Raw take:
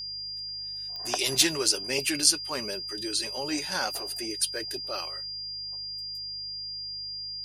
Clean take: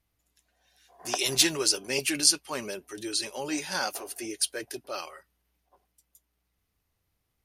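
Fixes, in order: de-click; de-hum 50.8 Hz, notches 3; notch 4800 Hz, Q 30

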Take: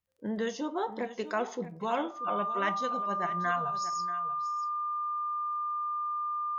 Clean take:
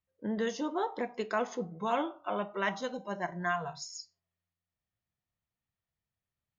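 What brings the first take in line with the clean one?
de-click; notch 1200 Hz, Q 30; inverse comb 0.636 s -13.5 dB

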